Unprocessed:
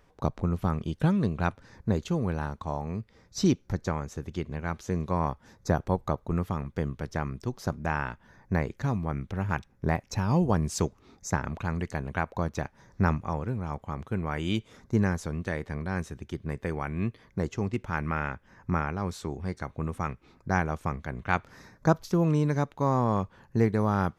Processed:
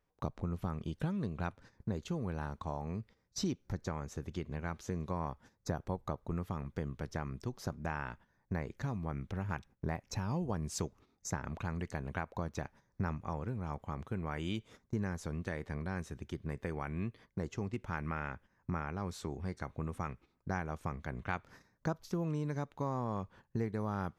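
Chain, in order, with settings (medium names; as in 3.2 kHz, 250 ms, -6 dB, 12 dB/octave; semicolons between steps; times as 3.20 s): gate -47 dBFS, range -15 dB; compression 2.5:1, threshold -31 dBFS, peak gain reduction 11 dB; trim -4 dB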